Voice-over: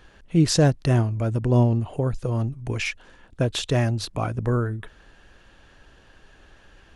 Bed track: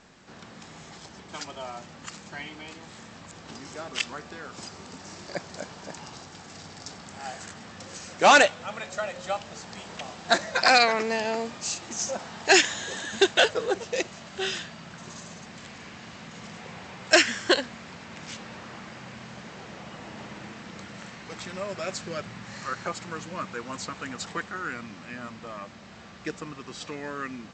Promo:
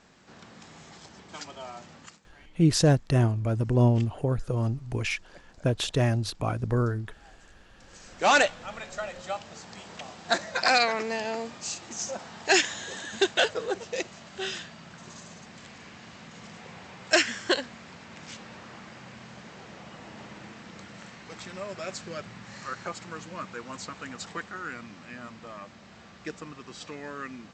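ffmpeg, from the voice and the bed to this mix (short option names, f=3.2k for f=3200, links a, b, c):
-filter_complex "[0:a]adelay=2250,volume=-2.5dB[a];[1:a]volume=12.5dB,afade=t=out:st=1.96:d=0.24:silence=0.158489,afade=t=in:st=7.72:d=0.71:silence=0.158489[b];[a][b]amix=inputs=2:normalize=0"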